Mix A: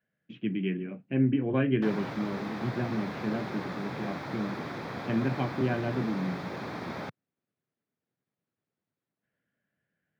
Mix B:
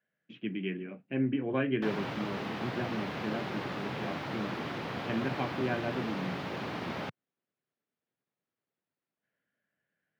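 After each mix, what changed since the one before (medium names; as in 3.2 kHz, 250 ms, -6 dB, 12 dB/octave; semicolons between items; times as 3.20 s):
speech: add bass shelf 230 Hz -10.5 dB; background: add peaking EQ 2.9 kHz +13 dB 0.23 oct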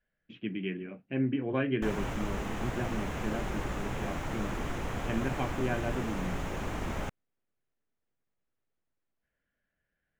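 background: add resonant high shelf 5.7 kHz +8 dB, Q 3; master: remove high-pass 120 Hz 24 dB/octave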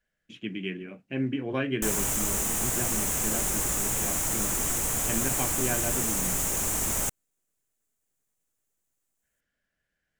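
master: remove distance through air 320 m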